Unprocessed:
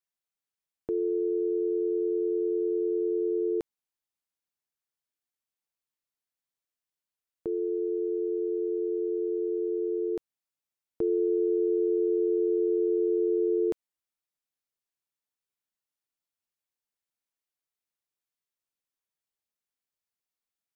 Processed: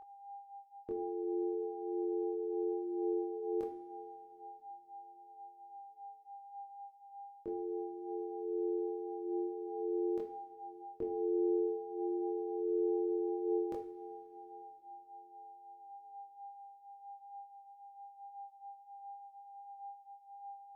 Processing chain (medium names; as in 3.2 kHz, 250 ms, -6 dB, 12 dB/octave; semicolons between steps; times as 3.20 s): two-slope reverb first 0.47 s, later 4.4 s, from -20 dB, DRR 3.5 dB; whistle 800 Hz -39 dBFS; chorus voices 4, 0.36 Hz, delay 23 ms, depth 2.5 ms; trim -5.5 dB